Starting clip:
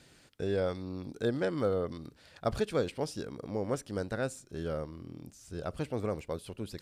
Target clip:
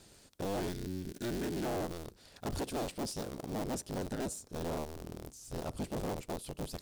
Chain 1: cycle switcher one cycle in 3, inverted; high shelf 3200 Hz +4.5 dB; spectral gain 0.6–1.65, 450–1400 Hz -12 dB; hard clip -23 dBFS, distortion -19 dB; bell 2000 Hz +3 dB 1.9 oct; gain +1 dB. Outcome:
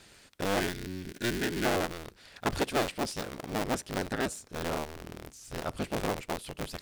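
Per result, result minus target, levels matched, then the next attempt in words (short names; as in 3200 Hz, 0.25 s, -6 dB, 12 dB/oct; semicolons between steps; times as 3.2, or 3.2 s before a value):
hard clip: distortion -12 dB; 2000 Hz band +7.5 dB
cycle switcher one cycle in 3, inverted; high shelf 3200 Hz +4.5 dB; spectral gain 0.6–1.65, 450–1400 Hz -12 dB; hard clip -32.5 dBFS, distortion -7 dB; bell 2000 Hz +3 dB 1.9 oct; gain +1 dB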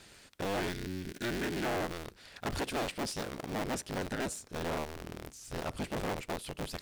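2000 Hz band +7.5 dB
cycle switcher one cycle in 3, inverted; high shelf 3200 Hz +4.5 dB; spectral gain 0.6–1.65, 450–1400 Hz -12 dB; hard clip -32.5 dBFS, distortion -7 dB; bell 2000 Hz -7.5 dB 1.9 oct; gain +1 dB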